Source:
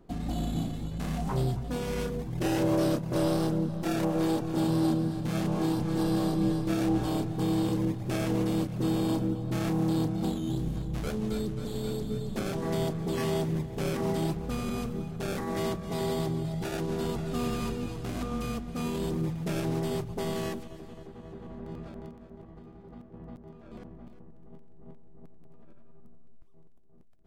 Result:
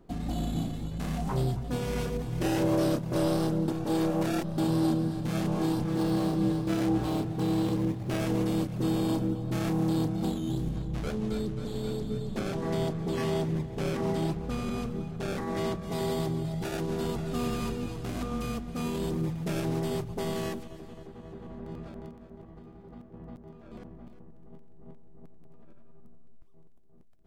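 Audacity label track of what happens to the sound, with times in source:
1.470000	1.920000	echo throw 0.25 s, feedback 65%, level -7.5 dB
3.680000	4.580000	reverse
5.840000	8.210000	running maximum over 5 samples
10.690000	15.820000	high shelf 9300 Hz -9.5 dB

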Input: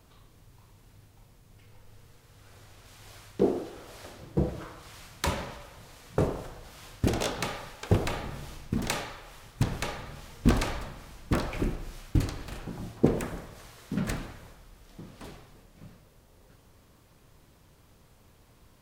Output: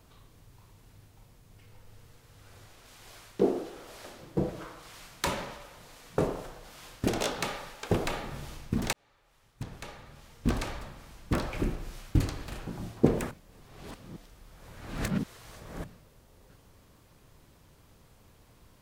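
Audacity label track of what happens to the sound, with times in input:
2.680000	8.320000	bell 77 Hz -10 dB 1.4 oct
8.930000	11.880000	fade in
13.310000	15.840000	reverse

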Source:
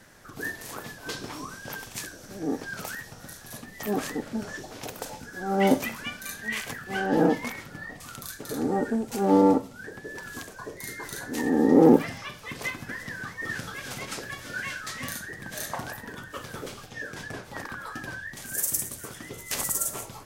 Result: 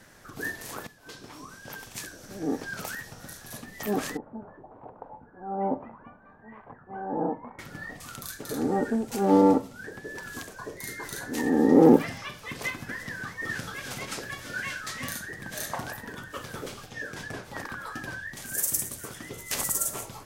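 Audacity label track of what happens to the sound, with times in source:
0.870000	2.430000	fade in, from -14.5 dB
4.170000	7.590000	ladder low-pass 1100 Hz, resonance 50%

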